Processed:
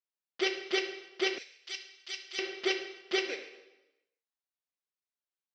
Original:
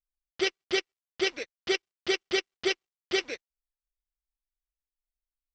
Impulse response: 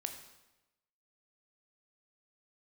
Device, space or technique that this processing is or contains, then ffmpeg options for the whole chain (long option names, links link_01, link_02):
supermarket ceiling speaker: -filter_complex "[0:a]highpass=270,lowpass=5900[link_01];[1:a]atrim=start_sample=2205[link_02];[link_01][link_02]afir=irnorm=-1:irlink=0,asettb=1/sr,asplit=3[link_03][link_04][link_05];[link_03]atrim=end=1.384[link_06];[link_04]atrim=start=1.38:end=2.39,asetpts=PTS-STARTPTS,afade=type=in:duration=0.004:curve=qsin,afade=type=out:start_time=1.006:duration=0.004:curve=qsin,aderivative[link_07];[link_05]atrim=start=2.386[link_08];[link_06][link_07]acrossfade=duration=0.004:curve1=hsin:curve2=qsin[link_09];[link_09][link_08]acrossfade=duration=0.004:curve1=qsin:curve2=hsin"